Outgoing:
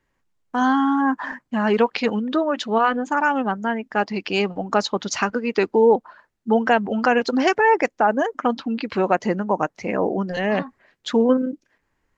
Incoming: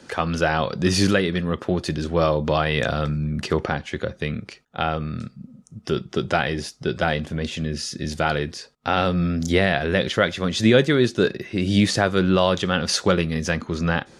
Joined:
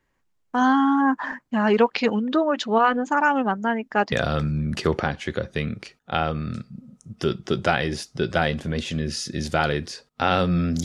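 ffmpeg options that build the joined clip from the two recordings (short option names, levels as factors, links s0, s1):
-filter_complex "[0:a]apad=whole_dur=10.84,atrim=end=10.84,atrim=end=4.122[s0];[1:a]atrim=start=2.778:end=9.5[s1];[s0][s1]acrossfade=d=0.004:c1=hsin:c2=hsin"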